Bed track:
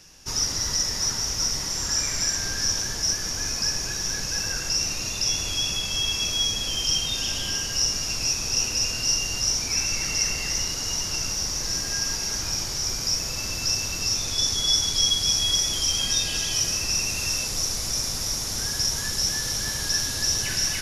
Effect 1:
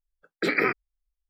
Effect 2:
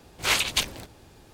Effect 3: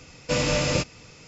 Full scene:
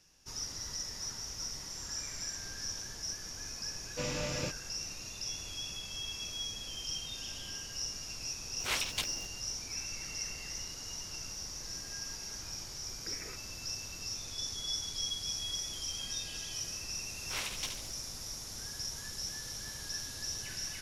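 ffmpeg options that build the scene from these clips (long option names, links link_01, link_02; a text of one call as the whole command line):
ffmpeg -i bed.wav -i cue0.wav -i cue1.wav -i cue2.wav -filter_complex "[2:a]asplit=2[link_01][link_02];[0:a]volume=-15dB[link_03];[link_01]acrusher=bits=8:dc=4:mix=0:aa=0.000001[link_04];[1:a]acompressor=threshold=-31dB:ratio=6:attack=3.2:release=140:knee=1:detection=peak[link_05];[link_02]aecho=1:1:72|144|216|288|360|432:0.473|0.227|0.109|0.0523|0.0251|0.0121[link_06];[3:a]atrim=end=1.27,asetpts=PTS-STARTPTS,volume=-13dB,afade=type=in:duration=0.004:curve=hsin,afade=type=out:start_time=1.266:duration=0.004:curve=hsin,adelay=3680[link_07];[link_04]atrim=end=1.33,asetpts=PTS-STARTPTS,volume=-11dB,afade=type=in:duration=0.004:curve=hsin,afade=type=out:start_time=1.326:duration=0.004:curve=hsin,adelay=8410[link_08];[link_05]atrim=end=1.29,asetpts=PTS-STARTPTS,volume=-15.5dB,afade=type=in:duration=0.004:curve=hsin,afade=type=out:start_time=1.286:duration=0.004:curve=hsin,adelay=12640[link_09];[link_06]atrim=end=1.33,asetpts=PTS-STARTPTS,volume=-16.5dB,afade=type=in:duration=0.004:curve=hsin,afade=type=out:start_time=1.326:duration=0.004:curve=hsin,adelay=17060[link_10];[link_03][link_07][link_08][link_09][link_10]amix=inputs=5:normalize=0" out.wav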